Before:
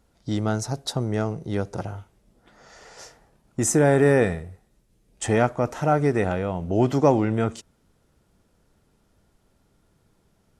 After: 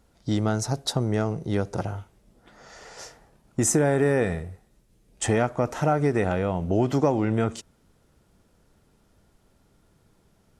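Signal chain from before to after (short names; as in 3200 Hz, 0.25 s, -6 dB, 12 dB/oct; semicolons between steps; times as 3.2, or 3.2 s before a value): compressor 4:1, threshold -20 dBFS, peak gain reduction 7.5 dB; gain +2 dB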